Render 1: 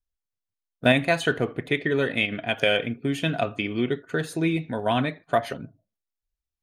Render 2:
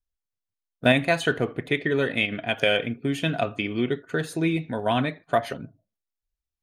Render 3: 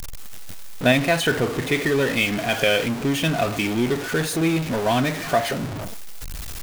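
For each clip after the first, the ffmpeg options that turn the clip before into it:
-af anull
-af "aeval=exprs='val(0)+0.5*0.075*sgn(val(0))':c=same,acrusher=bits=5:mix=0:aa=0.5"

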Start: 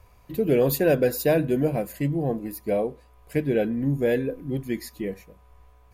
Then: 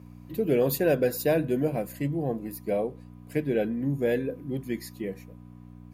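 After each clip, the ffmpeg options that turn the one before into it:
-af "aeval=exprs='val(0)+0.0141*(sin(2*PI*60*n/s)+sin(2*PI*2*60*n/s)/2+sin(2*PI*3*60*n/s)/3+sin(2*PI*4*60*n/s)/4+sin(2*PI*5*60*n/s)/5)':c=same,highpass=110,volume=0.708"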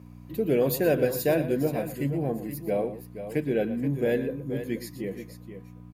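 -af "aecho=1:1:118|477:0.211|0.299"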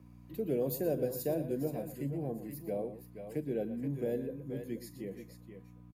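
-filter_complex "[0:a]acrossover=split=180|850|4800[s0][s1][s2][s3];[s2]acompressor=threshold=0.00316:ratio=6[s4];[s3]asplit=2[s5][s6];[s6]adelay=41,volume=0.266[s7];[s5][s7]amix=inputs=2:normalize=0[s8];[s0][s1][s4][s8]amix=inputs=4:normalize=0,volume=0.376"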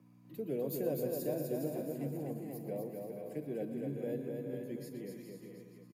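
-filter_complex "[0:a]highpass=f=120:w=0.5412,highpass=f=120:w=1.3066,asplit=2[s0][s1];[s1]aecho=0:1:250|412.5|518.1|586.8|631.4:0.631|0.398|0.251|0.158|0.1[s2];[s0][s2]amix=inputs=2:normalize=0,volume=0.596"

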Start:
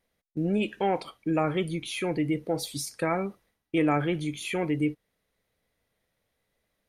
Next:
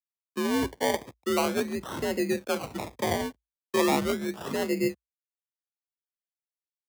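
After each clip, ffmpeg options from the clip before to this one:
-af "acrusher=samples=27:mix=1:aa=0.000001:lfo=1:lforange=16.2:lforate=0.37,aeval=exprs='sgn(val(0))*max(abs(val(0))-0.00158,0)':c=same,afreqshift=55"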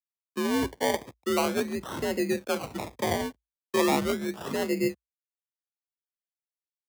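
-af anull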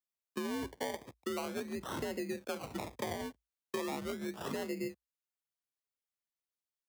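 -af "acompressor=threshold=0.0224:ratio=6,volume=0.794"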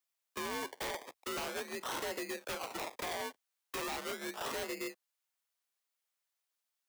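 -af "highpass=590,aeval=exprs='0.0106*(abs(mod(val(0)/0.0106+3,4)-2)-1)':c=same,volume=2.24"

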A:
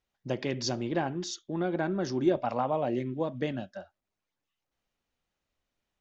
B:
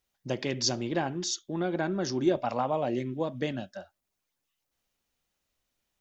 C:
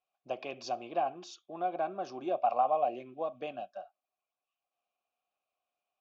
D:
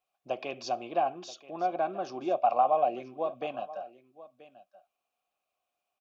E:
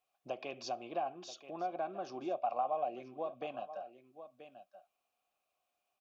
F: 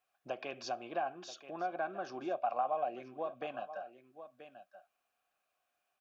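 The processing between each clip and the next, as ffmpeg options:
-af "highshelf=f=4800:g=11"
-filter_complex "[0:a]asplit=3[s0][s1][s2];[s0]bandpass=f=730:t=q:w=8,volume=1[s3];[s1]bandpass=f=1090:t=q:w=8,volume=0.501[s4];[s2]bandpass=f=2440:t=q:w=8,volume=0.355[s5];[s3][s4][s5]amix=inputs=3:normalize=0,volume=2.24"
-af "aecho=1:1:980:0.126,volume=1.5"
-af "acompressor=threshold=0.00355:ratio=1.5"
-af "equalizer=f=1600:w=2.8:g=11.5"

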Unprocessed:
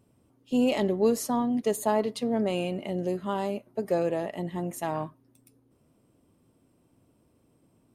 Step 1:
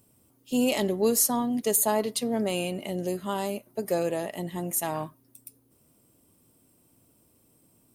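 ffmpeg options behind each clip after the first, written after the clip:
-af "aemphasis=mode=production:type=75fm"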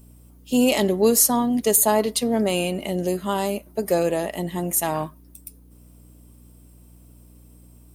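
-af "aeval=exprs='val(0)+0.002*(sin(2*PI*60*n/s)+sin(2*PI*2*60*n/s)/2+sin(2*PI*3*60*n/s)/3+sin(2*PI*4*60*n/s)/4+sin(2*PI*5*60*n/s)/5)':c=same,volume=2"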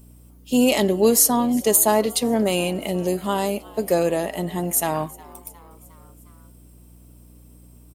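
-filter_complex "[0:a]asplit=5[s0][s1][s2][s3][s4];[s1]adelay=359,afreqshift=92,volume=0.0794[s5];[s2]adelay=718,afreqshift=184,volume=0.0468[s6];[s3]adelay=1077,afreqshift=276,volume=0.0275[s7];[s4]adelay=1436,afreqshift=368,volume=0.0164[s8];[s0][s5][s6][s7][s8]amix=inputs=5:normalize=0,volume=1.12"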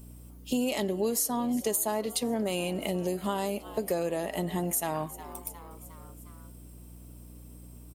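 -af "acompressor=threshold=0.0398:ratio=4"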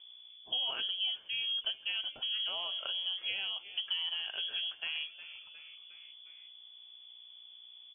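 -af "lowpass=f=3000:t=q:w=0.5098,lowpass=f=3000:t=q:w=0.6013,lowpass=f=3000:t=q:w=0.9,lowpass=f=3000:t=q:w=2.563,afreqshift=-3500,volume=0.501"

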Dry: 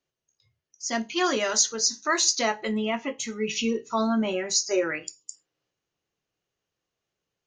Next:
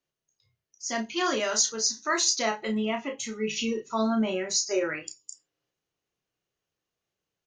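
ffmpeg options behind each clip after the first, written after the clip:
-filter_complex "[0:a]asplit=2[s0][s1];[s1]adelay=32,volume=0.501[s2];[s0][s2]amix=inputs=2:normalize=0,volume=0.708"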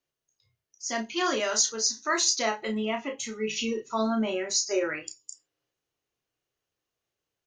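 -af "equalizer=f=180:w=5.6:g=-10.5"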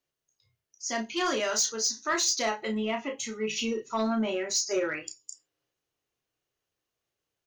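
-af "asoftclip=type=tanh:threshold=0.119"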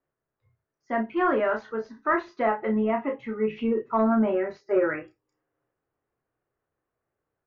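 -af "lowpass=f=1700:w=0.5412,lowpass=f=1700:w=1.3066,volume=2"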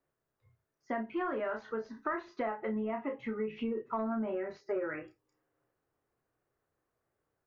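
-af "acompressor=threshold=0.0224:ratio=5"

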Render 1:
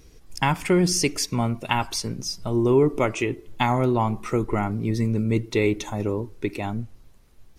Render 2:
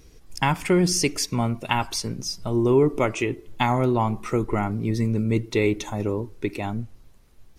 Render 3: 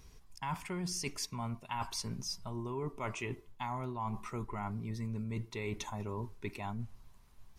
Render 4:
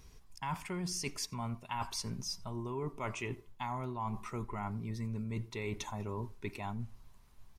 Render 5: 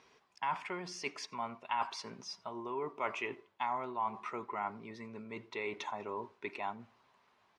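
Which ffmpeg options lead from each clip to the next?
-af anull
-af "equalizer=f=315:t=o:w=0.33:g=-11,equalizer=f=500:t=o:w=0.33:g=-8,equalizer=f=1000:t=o:w=0.33:g=8,areverse,acompressor=threshold=0.0316:ratio=6,areverse,volume=0.531"
-filter_complex "[0:a]asplit=2[s0][s1];[s1]adelay=87.46,volume=0.0562,highshelf=f=4000:g=-1.97[s2];[s0][s2]amix=inputs=2:normalize=0"
-af "highpass=440,lowpass=3100,volume=1.68"

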